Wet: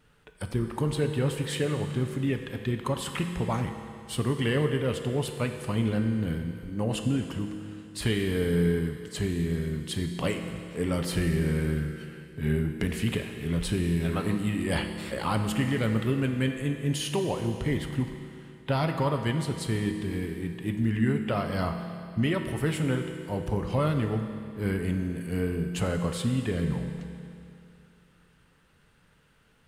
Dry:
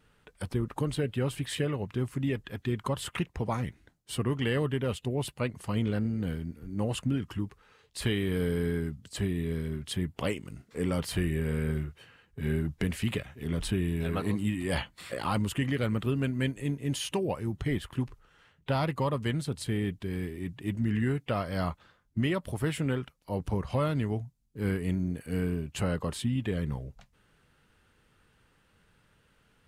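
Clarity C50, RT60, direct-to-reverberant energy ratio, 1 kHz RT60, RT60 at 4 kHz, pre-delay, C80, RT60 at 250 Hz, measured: 6.5 dB, 2.6 s, 5.0 dB, 2.6 s, 2.5 s, 6 ms, 7.5 dB, 2.6 s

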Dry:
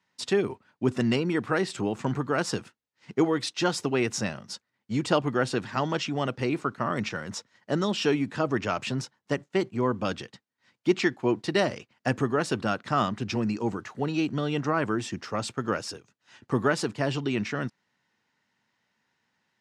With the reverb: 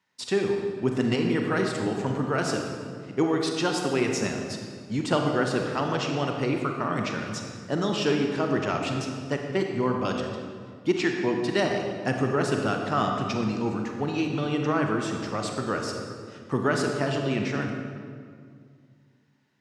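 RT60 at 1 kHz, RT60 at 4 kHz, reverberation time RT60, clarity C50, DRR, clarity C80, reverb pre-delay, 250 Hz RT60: 1.9 s, 1.4 s, 2.1 s, 3.0 dB, 2.0 dB, 4.5 dB, 31 ms, 2.7 s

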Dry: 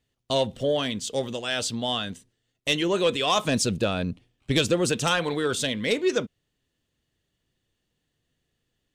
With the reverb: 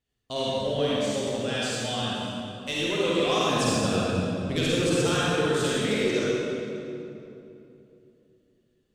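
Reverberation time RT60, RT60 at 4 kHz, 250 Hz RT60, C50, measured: 2.9 s, 1.9 s, 3.5 s, −6.5 dB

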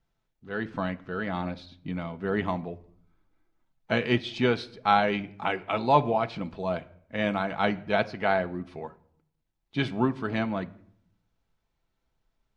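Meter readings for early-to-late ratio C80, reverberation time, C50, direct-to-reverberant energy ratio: 23.0 dB, 0.65 s, 19.5 dB, 8.0 dB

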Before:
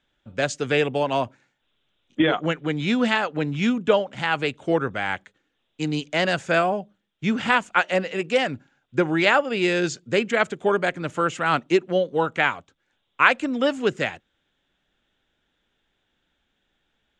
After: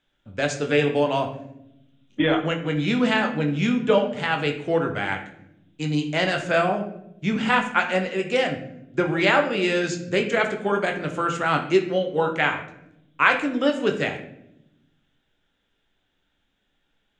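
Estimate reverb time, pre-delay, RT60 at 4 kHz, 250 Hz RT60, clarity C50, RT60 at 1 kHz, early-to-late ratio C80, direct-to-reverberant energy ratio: 0.80 s, 10 ms, 0.50 s, 1.5 s, 9.0 dB, 0.65 s, 12.0 dB, 3.0 dB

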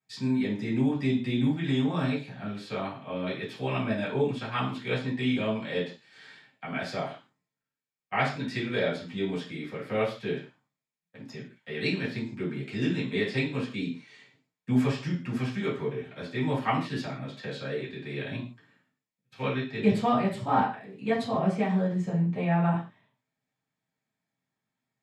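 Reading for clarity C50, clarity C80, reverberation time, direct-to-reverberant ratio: 8.0 dB, 12.5 dB, non-exponential decay, −8.0 dB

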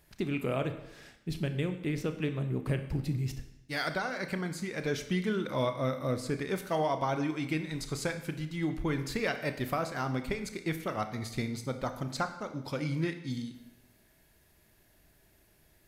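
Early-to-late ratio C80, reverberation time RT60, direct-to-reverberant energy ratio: 12.5 dB, 0.90 s, 8.0 dB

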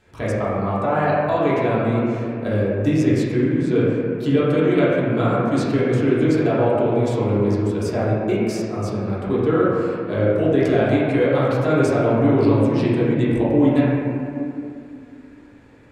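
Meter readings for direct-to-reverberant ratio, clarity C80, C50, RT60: −9.0 dB, −0.5 dB, −3.0 dB, 2.5 s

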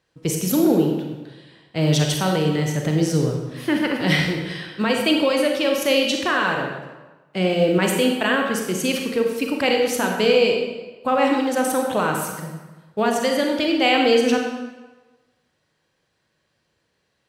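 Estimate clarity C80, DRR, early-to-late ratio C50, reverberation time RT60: 5.0 dB, 1.5 dB, 3.0 dB, 1.2 s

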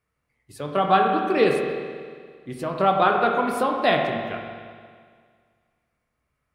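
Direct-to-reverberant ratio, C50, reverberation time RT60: 1.0 dB, 3.5 dB, 1.9 s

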